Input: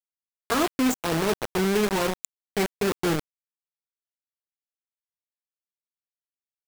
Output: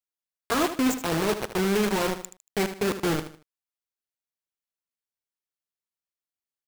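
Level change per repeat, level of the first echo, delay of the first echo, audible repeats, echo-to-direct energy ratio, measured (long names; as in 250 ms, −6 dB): −10.0 dB, −11.0 dB, 77 ms, 3, −10.5 dB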